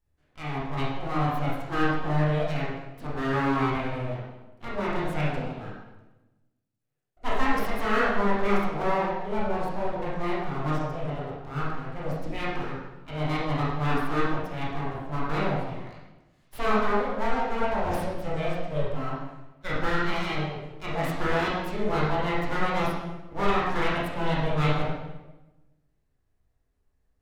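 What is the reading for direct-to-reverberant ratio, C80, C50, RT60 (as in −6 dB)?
−7.5 dB, 3.0 dB, −0.5 dB, 1.1 s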